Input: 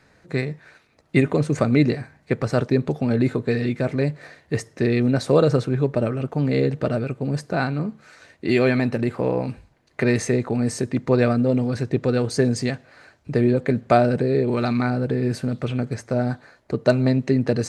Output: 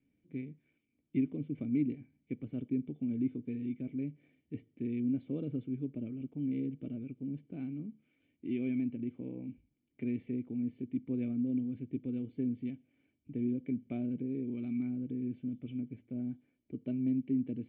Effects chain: cascade formant filter i; trim -9 dB

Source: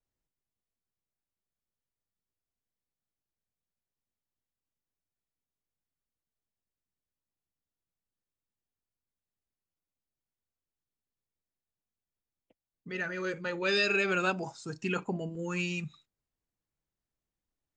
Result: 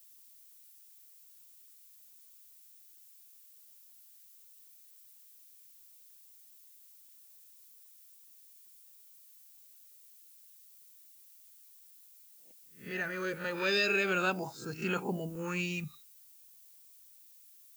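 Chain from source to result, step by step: reverse spectral sustain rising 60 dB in 0.32 s; added noise violet -56 dBFS; trim -2 dB

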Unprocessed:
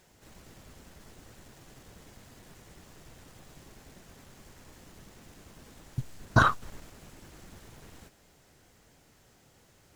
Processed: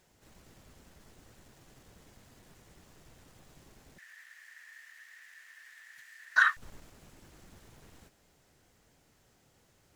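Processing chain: 3.98–6.57 s: resonant high-pass 1.8 kHz, resonance Q 15; trim -5.5 dB

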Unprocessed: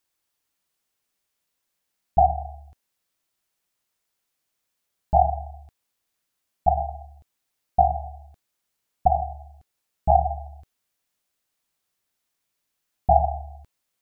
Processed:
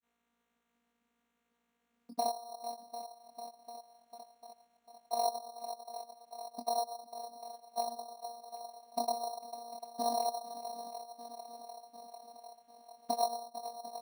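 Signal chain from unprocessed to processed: in parallel at -9 dB: saturation -16 dBFS, distortion -9 dB; on the sum: granulator, grains 20 per s, pitch spread up and down by 0 st; on a send: shuffle delay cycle 746 ms, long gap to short 1.5:1, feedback 38%, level -19 dB; on the sum: chorus voices 4, 0.43 Hz, delay 23 ms, depth 2.4 ms; compression 2:1, threshold -55 dBFS, peak gain reduction 22 dB; vocoder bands 16, saw 236 Hz; sample-and-hold 9×; trim +9.5 dB

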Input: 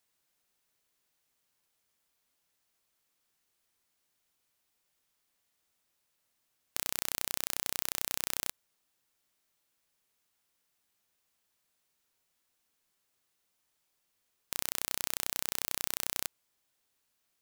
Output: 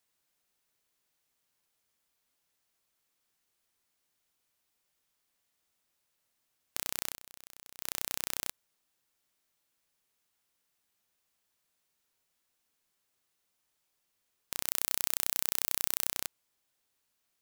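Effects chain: 7.07–7.89 s: dip -17 dB, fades 0.12 s; 14.67–16.10 s: treble shelf 7.8 kHz +6 dB; trim -1 dB

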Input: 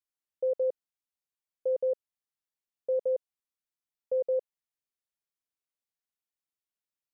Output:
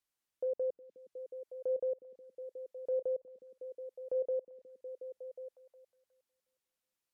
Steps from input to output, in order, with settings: low-pass that closes with the level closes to 600 Hz, closed at -26 dBFS; peak limiter -34 dBFS, peak gain reduction 11 dB; on a send: repeats whose band climbs or falls 363 ms, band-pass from 230 Hz, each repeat 0.7 oct, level -5.5 dB; on the sum: trim +4.5 dB

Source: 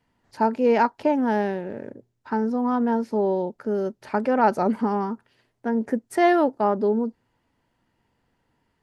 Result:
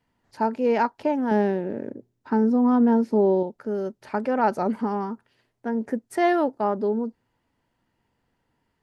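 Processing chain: 1.31–3.43 s: peaking EQ 280 Hz +8 dB 1.8 oct; trim -2.5 dB

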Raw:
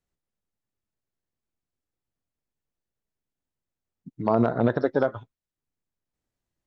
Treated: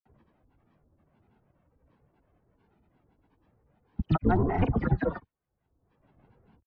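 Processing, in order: delay that grows with frequency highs early, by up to 171 ms; level-controlled noise filter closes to 940 Hz, open at -21.5 dBFS; bass shelf 180 Hz +10.5 dB; comb 2.7 ms, depth 91%; mistuned SSB -220 Hz 270–2900 Hz; granulator, grains 25 per s, pitch spread up and down by 12 st; three bands compressed up and down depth 100%

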